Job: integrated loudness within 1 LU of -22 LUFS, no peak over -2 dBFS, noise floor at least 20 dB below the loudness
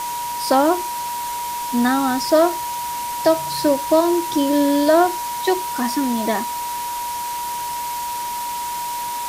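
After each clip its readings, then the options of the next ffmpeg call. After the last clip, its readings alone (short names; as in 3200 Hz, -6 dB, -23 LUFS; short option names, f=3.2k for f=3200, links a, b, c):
steady tone 960 Hz; tone level -24 dBFS; noise floor -26 dBFS; noise floor target -40 dBFS; loudness -20.0 LUFS; peak -4.5 dBFS; loudness target -22.0 LUFS
-> -af "bandreject=f=960:w=30"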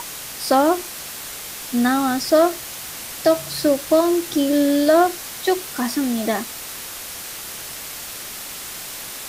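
steady tone none; noise floor -33 dBFS; noise floor target -42 dBFS
-> -af "afftdn=nr=9:nf=-33"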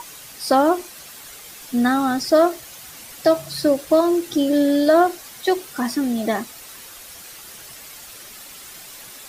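noise floor -40 dBFS; loudness -19.5 LUFS; peak -5.5 dBFS; loudness target -22.0 LUFS
-> -af "volume=-2.5dB"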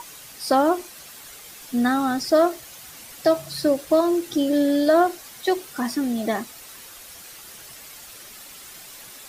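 loudness -22.0 LUFS; peak -8.0 dBFS; noise floor -43 dBFS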